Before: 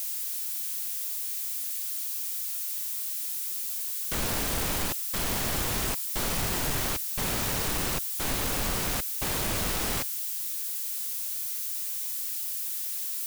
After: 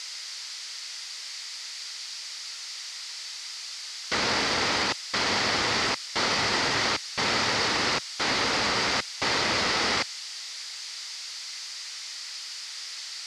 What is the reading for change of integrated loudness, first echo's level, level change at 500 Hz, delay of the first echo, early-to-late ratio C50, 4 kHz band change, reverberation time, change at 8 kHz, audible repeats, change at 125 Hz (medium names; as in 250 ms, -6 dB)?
+1.0 dB, no echo, +5.0 dB, no echo, no reverb, +9.0 dB, no reverb, -2.5 dB, no echo, -4.5 dB